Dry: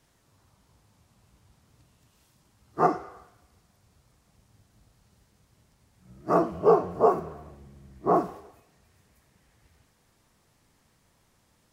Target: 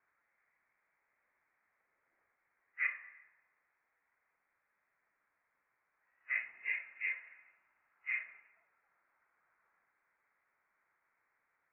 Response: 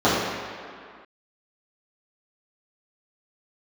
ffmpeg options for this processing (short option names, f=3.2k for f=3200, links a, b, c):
-af "highpass=f=1.3k:w=0.5412,highpass=f=1.3k:w=1.3066,highshelf=f=2.1k:g=-11.5,lowpass=f=2.7k:t=q:w=0.5098,lowpass=f=2.7k:t=q:w=0.6013,lowpass=f=2.7k:t=q:w=0.9,lowpass=f=2.7k:t=q:w=2.563,afreqshift=-3200,volume=1dB"